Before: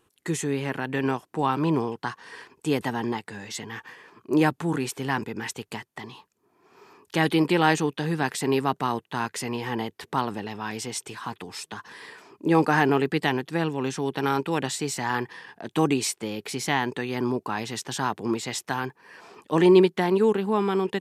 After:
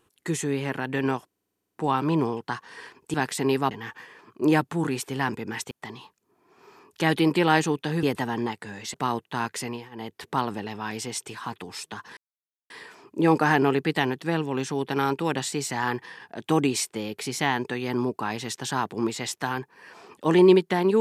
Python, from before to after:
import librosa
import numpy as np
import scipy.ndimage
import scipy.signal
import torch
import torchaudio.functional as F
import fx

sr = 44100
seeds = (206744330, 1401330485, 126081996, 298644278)

y = fx.edit(x, sr, fx.stutter(start_s=1.27, slice_s=0.05, count=10),
    fx.swap(start_s=2.69, length_s=0.91, other_s=8.17, other_length_s=0.57),
    fx.cut(start_s=5.6, length_s=0.25),
    fx.fade_down_up(start_s=9.32, length_s=0.76, db=-19.5, fade_s=0.37, curve='qsin'),
    fx.insert_silence(at_s=11.97, length_s=0.53), tone=tone)